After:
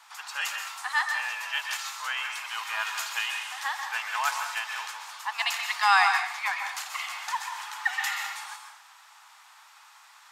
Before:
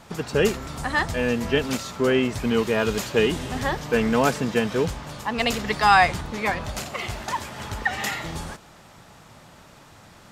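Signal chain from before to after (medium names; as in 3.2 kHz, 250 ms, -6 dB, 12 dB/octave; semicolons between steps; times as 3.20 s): steep high-pass 840 Hz 48 dB/octave; plate-style reverb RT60 0.6 s, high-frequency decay 0.95×, pre-delay 115 ms, DRR 4 dB; trim -2.5 dB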